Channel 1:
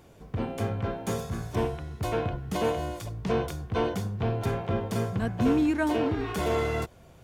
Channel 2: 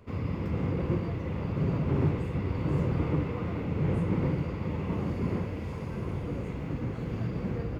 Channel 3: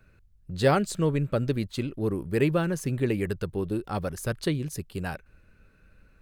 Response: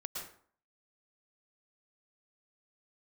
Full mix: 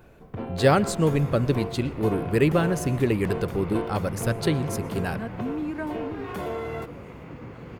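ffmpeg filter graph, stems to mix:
-filter_complex "[0:a]highpass=f=170:p=1,volume=1.5dB[a];[1:a]lowshelf=f=440:g=-11.5,adelay=600,volume=-0.5dB,asplit=2[b][c];[c]volume=-7dB[d];[2:a]volume=2.5dB,asplit=2[e][f];[f]volume=-17dB[g];[a][b]amix=inputs=2:normalize=0,equalizer=f=6.4k:t=o:w=2.1:g=-11,acompressor=threshold=-29dB:ratio=3,volume=0dB[h];[3:a]atrim=start_sample=2205[i];[d][g]amix=inputs=2:normalize=0[j];[j][i]afir=irnorm=-1:irlink=0[k];[e][h][k]amix=inputs=3:normalize=0"

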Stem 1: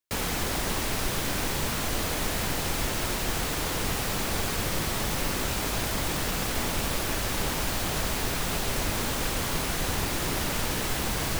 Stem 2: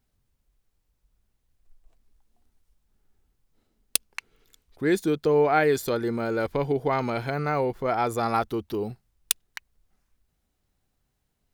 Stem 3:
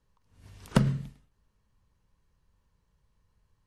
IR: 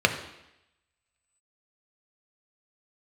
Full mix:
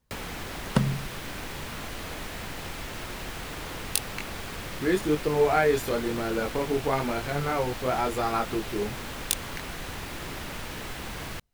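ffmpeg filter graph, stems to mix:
-filter_complex "[0:a]acrossover=split=1300|3600[a][b][c];[a]acompressor=threshold=-35dB:ratio=4[d];[b]acompressor=threshold=-40dB:ratio=4[e];[c]acompressor=threshold=-46dB:ratio=4[f];[d][e][f]amix=inputs=3:normalize=0,volume=-1dB[g];[1:a]flanger=delay=20:depth=4.6:speed=0.97,volume=1dB[h];[2:a]volume=-0.5dB[i];[g][h][i]amix=inputs=3:normalize=0"

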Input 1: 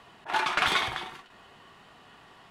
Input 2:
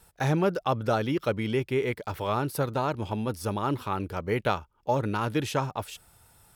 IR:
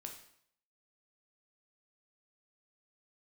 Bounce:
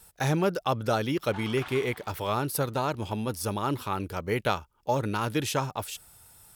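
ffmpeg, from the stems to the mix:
-filter_complex "[0:a]highshelf=f=2k:g=-12,adelay=1000,volume=-13.5dB[a];[1:a]volume=-1dB[b];[a][b]amix=inputs=2:normalize=0,highshelf=f=3.9k:g=8.5"

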